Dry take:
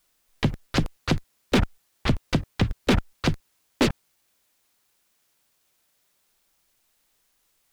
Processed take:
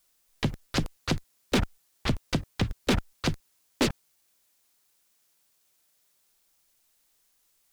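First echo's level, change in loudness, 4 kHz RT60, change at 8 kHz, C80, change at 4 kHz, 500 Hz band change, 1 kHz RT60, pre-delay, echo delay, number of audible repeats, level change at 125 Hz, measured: none, -4.0 dB, none, +0.5 dB, none, -2.0 dB, -4.0 dB, none, none, none, none, -5.0 dB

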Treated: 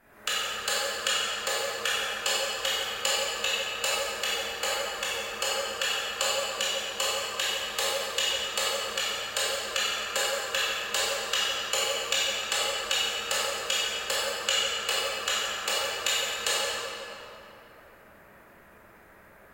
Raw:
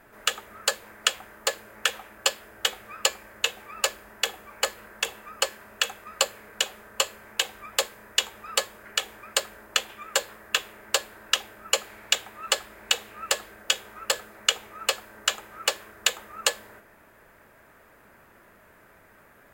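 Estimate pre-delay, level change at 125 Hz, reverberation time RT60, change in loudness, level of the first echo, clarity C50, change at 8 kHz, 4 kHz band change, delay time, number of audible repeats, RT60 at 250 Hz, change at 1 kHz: 16 ms, n/a, 2.9 s, +0.5 dB, none, -5.0 dB, -1.0 dB, +0.5 dB, none, none, 3.0 s, +1.5 dB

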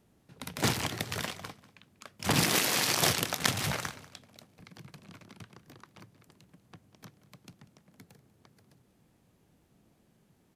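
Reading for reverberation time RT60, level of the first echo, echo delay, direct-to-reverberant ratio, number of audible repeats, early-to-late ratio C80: none, -19.0 dB, 0.192 s, none, 2, none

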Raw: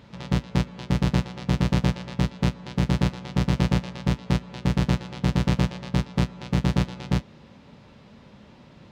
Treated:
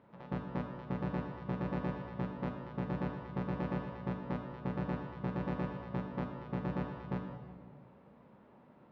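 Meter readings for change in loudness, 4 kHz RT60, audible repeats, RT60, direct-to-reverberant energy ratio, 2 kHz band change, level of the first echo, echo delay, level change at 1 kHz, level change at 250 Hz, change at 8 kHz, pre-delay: -13.5 dB, 1.2 s, none, 1.6 s, 3.5 dB, -13.0 dB, none, none, -8.0 dB, -12.0 dB, under -30 dB, 28 ms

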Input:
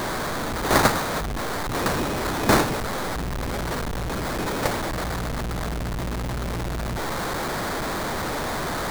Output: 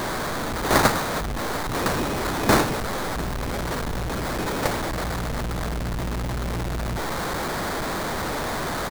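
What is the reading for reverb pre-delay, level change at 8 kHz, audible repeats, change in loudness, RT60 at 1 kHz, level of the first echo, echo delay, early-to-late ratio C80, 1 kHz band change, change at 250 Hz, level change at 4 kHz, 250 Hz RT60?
none, 0.0 dB, 2, 0.0 dB, none, -18.0 dB, 0.699 s, none, 0.0 dB, 0.0 dB, 0.0 dB, none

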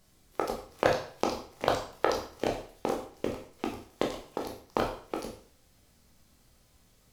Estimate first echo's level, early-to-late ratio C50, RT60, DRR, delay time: none, 6.5 dB, 0.50 s, 0.0 dB, none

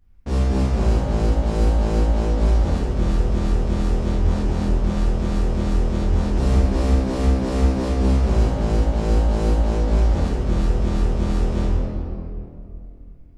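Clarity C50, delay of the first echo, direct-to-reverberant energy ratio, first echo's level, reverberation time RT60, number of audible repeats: -4.5 dB, none, -10.0 dB, none, 2.6 s, none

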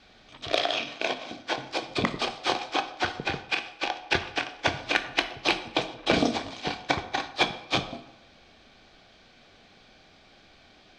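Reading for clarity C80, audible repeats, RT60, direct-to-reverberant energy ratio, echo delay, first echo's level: 14.5 dB, none, 0.85 s, 9.5 dB, none, none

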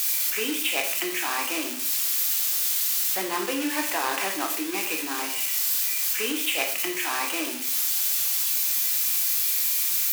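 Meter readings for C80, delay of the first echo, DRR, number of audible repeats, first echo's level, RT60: 11.0 dB, none, 2.0 dB, none, none, 0.55 s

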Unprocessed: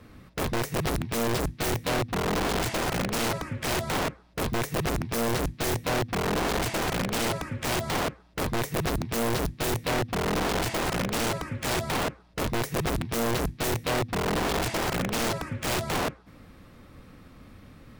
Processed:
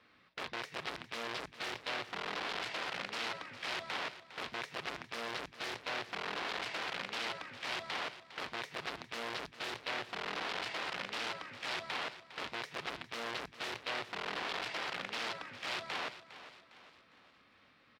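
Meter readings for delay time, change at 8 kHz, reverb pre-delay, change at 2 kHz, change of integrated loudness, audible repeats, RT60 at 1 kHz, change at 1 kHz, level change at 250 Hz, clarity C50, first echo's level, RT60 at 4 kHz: 0.406 s, -19.0 dB, none, -6.5 dB, -11.0 dB, 4, none, -10.5 dB, -20.5 dB, none, -14.0 dB, none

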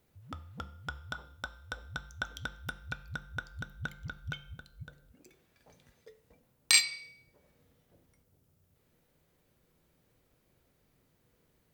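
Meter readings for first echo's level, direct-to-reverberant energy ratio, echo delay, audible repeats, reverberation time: none, 11.0 dB, none, none, 0.60 s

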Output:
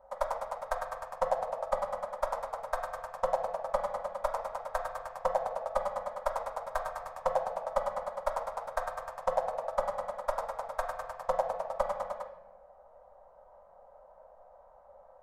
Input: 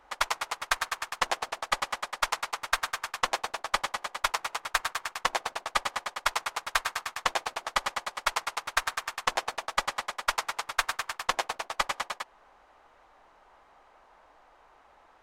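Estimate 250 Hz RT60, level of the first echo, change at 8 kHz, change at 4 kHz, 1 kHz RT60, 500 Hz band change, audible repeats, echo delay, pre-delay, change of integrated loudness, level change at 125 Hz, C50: 1.3 s, none, -17.0 dB, -22.5 dB, 0.85 s, +8.5 dB, none, none, 3 ms, -4.0 dB, 0.0 dB, 8.0 dB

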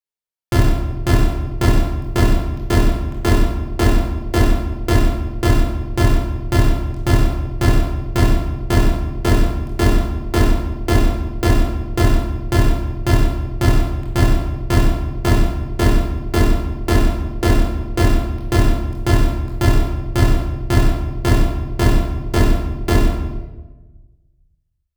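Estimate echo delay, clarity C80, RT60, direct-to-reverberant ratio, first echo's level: none, 5.0 dB, 1.2 s, -3.0 dB, none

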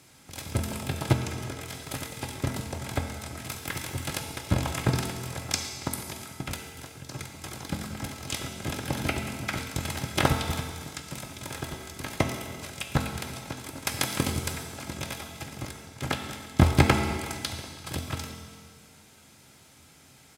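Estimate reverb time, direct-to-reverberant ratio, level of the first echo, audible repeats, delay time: 1.8 s, 3.5 dB, -22.0 dB, 1, 0.339 s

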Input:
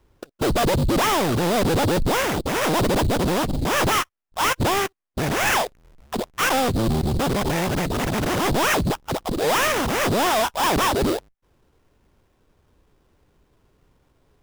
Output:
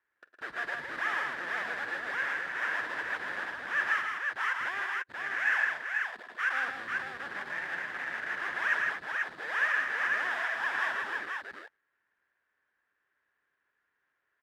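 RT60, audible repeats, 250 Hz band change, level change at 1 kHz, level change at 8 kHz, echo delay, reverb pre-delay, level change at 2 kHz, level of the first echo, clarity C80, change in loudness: none, 4, -29.5 dB, -13.5 dB, under -25 dB, 46 ms, none, -1.5 dB, -17.0 dB, none, -10.0 dB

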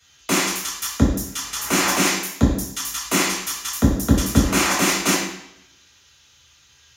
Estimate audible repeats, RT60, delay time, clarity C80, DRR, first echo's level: none, 0.75 s, none, 6.0 dB, -5.0 dB, none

